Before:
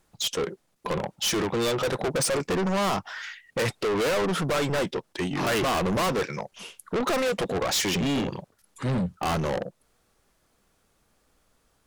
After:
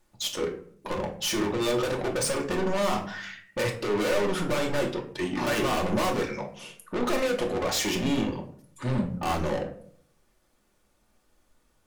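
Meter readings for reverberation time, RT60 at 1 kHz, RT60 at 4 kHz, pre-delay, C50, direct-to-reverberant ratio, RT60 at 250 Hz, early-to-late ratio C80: 0.55 s, 0.50 s, 0.30 s, 3 ms, 10.0 dB, 0.5 dB, 0.75 s, 14.5 dB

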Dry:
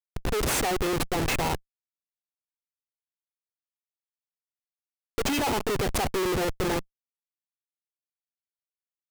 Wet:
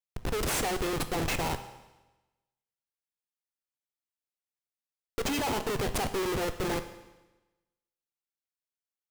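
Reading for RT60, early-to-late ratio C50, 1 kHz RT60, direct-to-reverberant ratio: 1.1 s, 11.5 dB, 1.1 s, 9.5 dB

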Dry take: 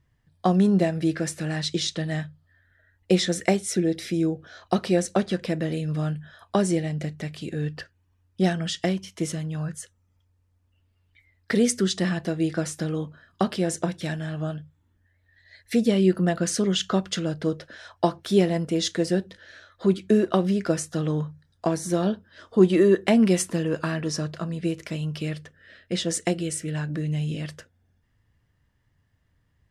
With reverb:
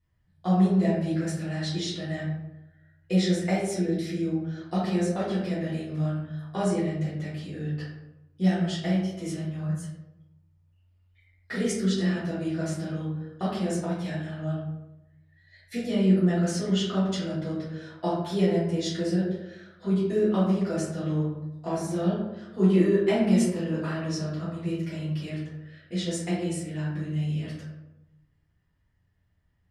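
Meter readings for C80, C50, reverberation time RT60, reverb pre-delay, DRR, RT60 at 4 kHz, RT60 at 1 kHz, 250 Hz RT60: 5.0 dB, 2.0 dB, 0.90 s, 3 ms, -11.0 dB, 0.50 s, 0.85 s, 1.1 s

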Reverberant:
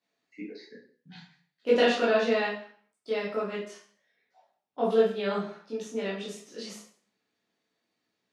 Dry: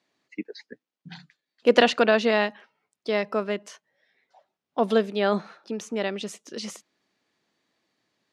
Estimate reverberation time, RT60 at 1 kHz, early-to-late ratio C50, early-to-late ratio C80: 0.50 s, 0.50 s, 3.5 dB, 8.5 dB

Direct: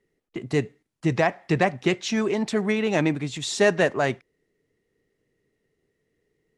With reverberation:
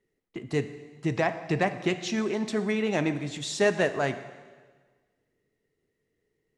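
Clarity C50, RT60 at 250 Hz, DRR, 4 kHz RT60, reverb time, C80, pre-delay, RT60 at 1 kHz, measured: 12.0 dB, 1.5 s, 10.0 dB, 1.4 s, 1.5 s, 13.0 dB, 6 ms, 1.5 s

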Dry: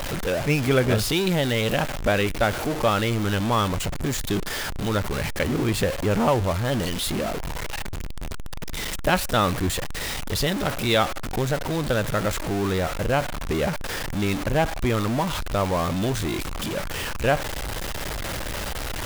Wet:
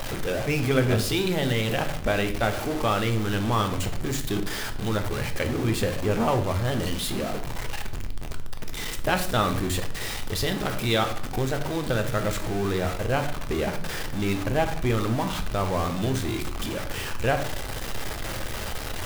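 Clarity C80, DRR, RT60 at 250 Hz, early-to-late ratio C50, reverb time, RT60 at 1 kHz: 15.5 dB, 6.0 dB, 0.85 s, 12.0 dB, 0.60 s, 0.55 s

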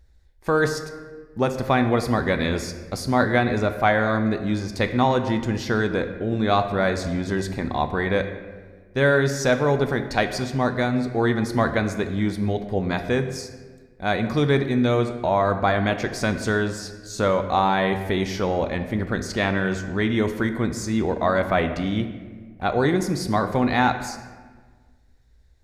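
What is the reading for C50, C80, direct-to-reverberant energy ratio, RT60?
9.5 dB, 11.0 dB, 7.0 dB, 1.5 s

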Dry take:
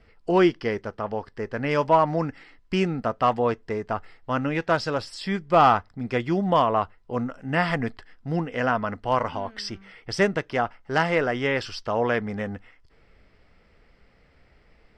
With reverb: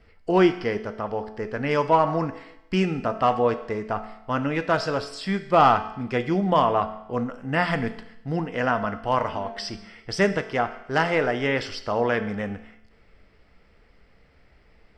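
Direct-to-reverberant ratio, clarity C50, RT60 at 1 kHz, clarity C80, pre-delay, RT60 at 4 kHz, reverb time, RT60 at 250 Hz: 9.0 dB, 12.5 dB, 0.85 s, 14.5 dB, 5 ms, 0.85 s, 0.85 s, 0.85 s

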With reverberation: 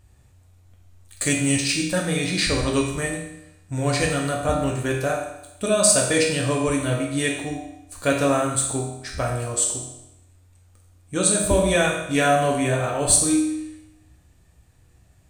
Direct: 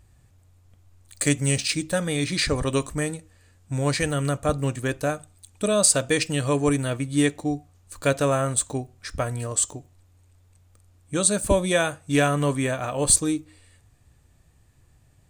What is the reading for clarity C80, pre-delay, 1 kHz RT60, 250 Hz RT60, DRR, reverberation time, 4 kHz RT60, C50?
6.5 dB, 7 ms, 0.85 s, 0.85 s, -1.5 dB, 0.85 s, 0.85 s, 3.5 dB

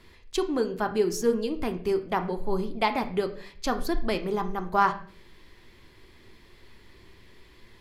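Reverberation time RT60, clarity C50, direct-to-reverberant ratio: 0.45 s, 12.5 dB, 7.0 dB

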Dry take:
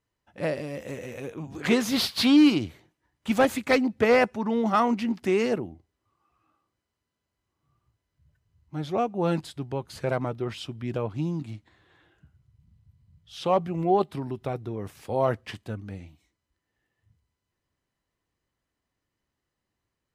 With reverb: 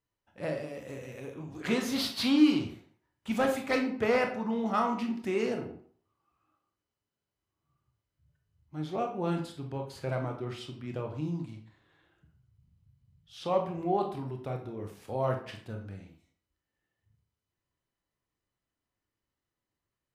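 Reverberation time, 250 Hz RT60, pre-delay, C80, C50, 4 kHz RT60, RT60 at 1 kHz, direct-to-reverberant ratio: 0.50 s, 0.50 s, 22 ms, 11.5 dB, 8.0 dB, 0.40 s, 0.50 s, 3.0 dB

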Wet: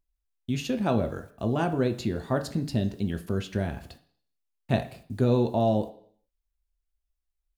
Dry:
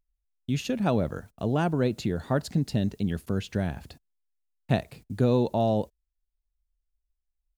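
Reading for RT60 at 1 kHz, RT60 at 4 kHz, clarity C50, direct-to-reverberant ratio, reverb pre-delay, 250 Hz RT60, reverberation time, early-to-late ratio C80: 0.55 s, 0.65 s, 14.0 dB, 6.0 dB, 3 ms, 0.55 s, 0.55 s, 17.5 dB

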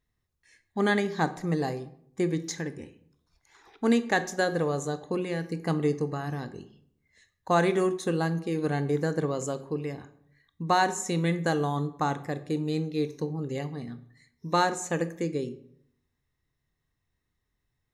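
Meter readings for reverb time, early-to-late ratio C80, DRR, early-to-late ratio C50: 0.65 s, 18.5 dB, 11.5 dB, 15.0 dB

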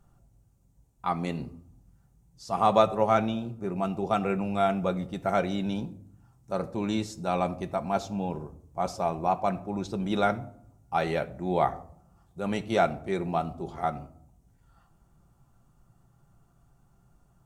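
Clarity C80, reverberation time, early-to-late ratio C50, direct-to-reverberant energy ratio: 20.5 dB, 0.60 s, 18.0 dB, 6.5 dB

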